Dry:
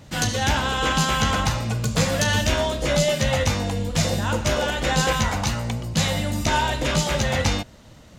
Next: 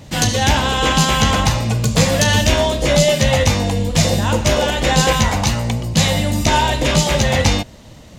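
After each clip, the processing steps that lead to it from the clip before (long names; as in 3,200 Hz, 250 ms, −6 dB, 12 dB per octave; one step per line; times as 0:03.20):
parametric band 1,400 Hz −6 dB 0.44 octaves
level +7 dB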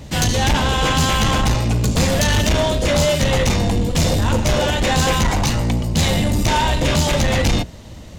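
sub-octave generator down 1 octave, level 0 dB
soft clipping −13 dBFS, distortion −10 dB
level +1 dB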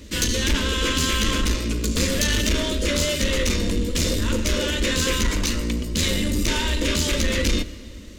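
phaser with its sweep stopped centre 320 Hz, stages 4
on a send at −17 dB: convolution reverb RT60 2.2 s, pre-delay 82 ms
on the sum: level −1.5 dB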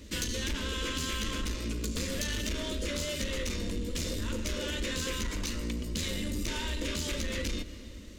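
downward compressor 4 to 1, threshold −24 dBFS, peak gain reduction 7 dB
level −6.5 dB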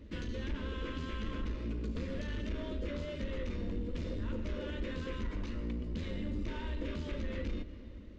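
in parallel at −10 dB: log-companded quantiser 4 bits
on the sum: head-to-tape spacing loss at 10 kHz 38 dB
level −4.5 dB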